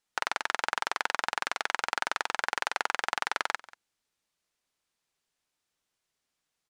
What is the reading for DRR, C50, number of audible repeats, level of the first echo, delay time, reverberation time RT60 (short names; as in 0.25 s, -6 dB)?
none, none, 1, -21.0 dB, 0.187 s, none